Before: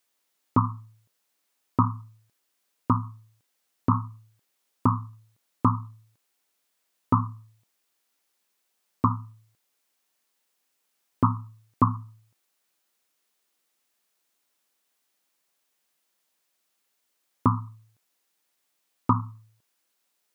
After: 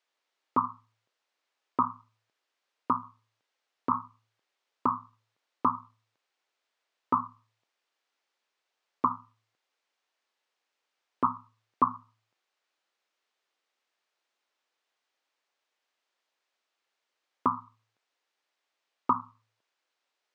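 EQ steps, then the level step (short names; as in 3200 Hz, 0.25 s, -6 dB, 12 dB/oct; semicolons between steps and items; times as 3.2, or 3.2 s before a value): HPF 410 Hz 12 dB/oct; air absorption 140 m; 0.0 dB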